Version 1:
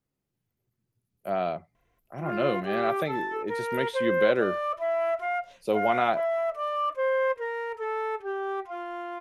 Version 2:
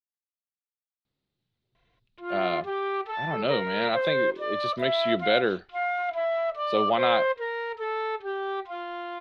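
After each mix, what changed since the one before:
speech: entry +1.05 s; master: add resonant low-pass 3.9 kHz, resonance Q 4.7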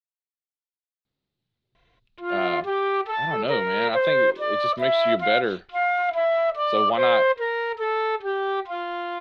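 background +5.5 dB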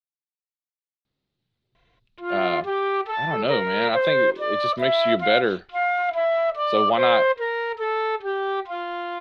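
speech +3.0 dB

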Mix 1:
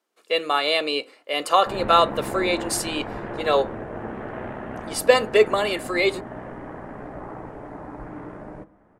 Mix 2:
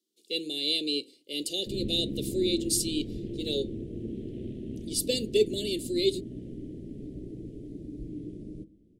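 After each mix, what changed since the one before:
master: add elliptic band-stop 360–3500 Hz, stop band 80 dB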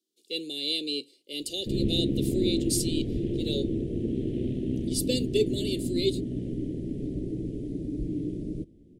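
background +9.0 dB; reverb: off

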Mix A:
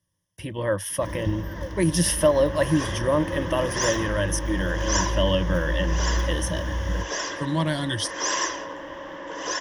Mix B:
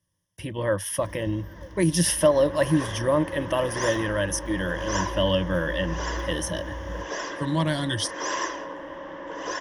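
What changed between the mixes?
first sound -9.0 dB; second sound: add treble shelf 3 kHz -10 dB

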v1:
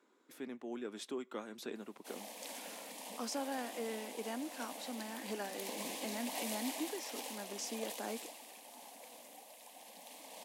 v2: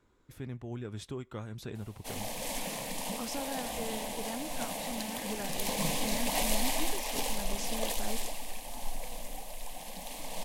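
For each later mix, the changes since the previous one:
background +10.0 dB; master: remove steep high-pass 230 Hz 36 dB/octave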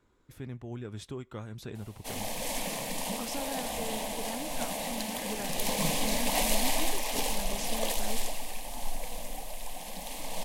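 reverb: on, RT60 0.85 s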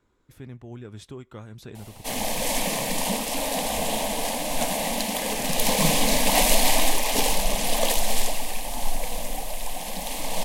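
background +8.5 dB

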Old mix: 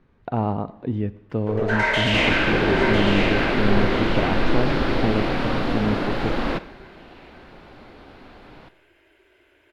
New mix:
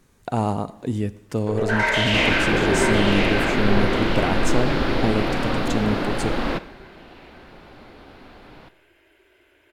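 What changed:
speech: remove distance through air 350 m; master: add treble shelf 7.8 kHz +7 dB

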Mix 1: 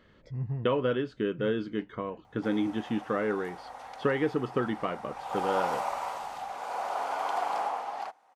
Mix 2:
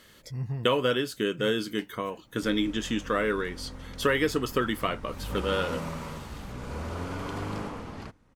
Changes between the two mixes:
speech: remove tape spacing loss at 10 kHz 37 dB; background: remove resonant high-pass 760 Hz, resonance Q 8.2

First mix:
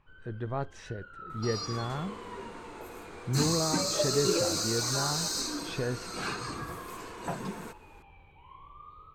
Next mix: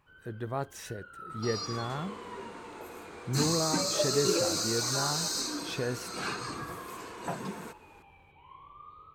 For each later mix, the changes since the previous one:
speech: remove distance through air 120 m; master: add high-pass 110 Hz 6 dB/octave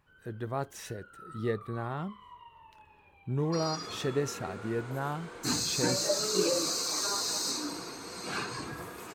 first sound -4.5 dB; second sound: entry +2.10 s

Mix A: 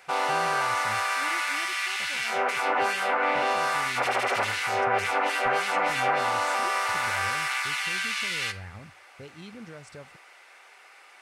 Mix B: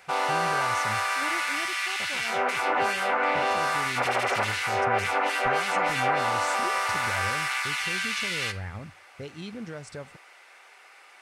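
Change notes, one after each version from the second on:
speech +5.5 dB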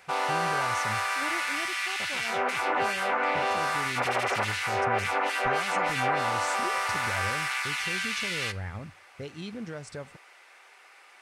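background: send -6.0 dB

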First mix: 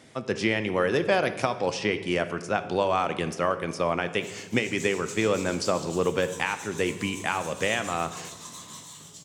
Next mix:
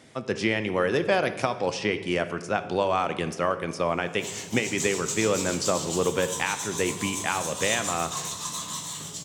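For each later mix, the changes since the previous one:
background +9.5 dB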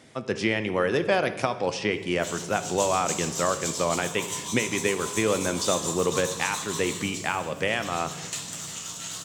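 background: entry -2.00 s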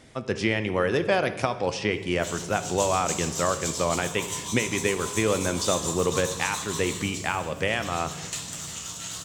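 master: remove high-pass 120 Hz 12 dB/octave

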